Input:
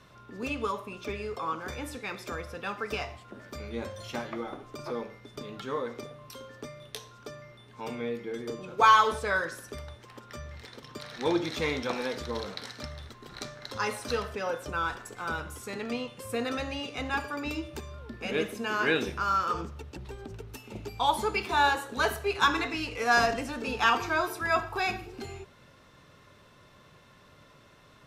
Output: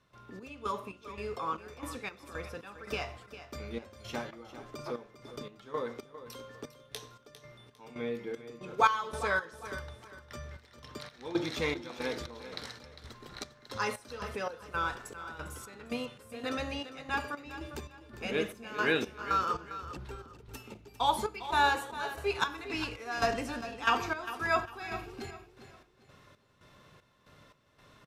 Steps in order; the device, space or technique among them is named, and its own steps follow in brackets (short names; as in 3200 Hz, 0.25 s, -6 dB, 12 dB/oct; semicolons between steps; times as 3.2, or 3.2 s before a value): trance gate with a delay (step gate ".xx..xx..xxx." 115 bpm -12 dB; feedback echo 0.402 s, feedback 31%, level -13 dB); gain -2 dB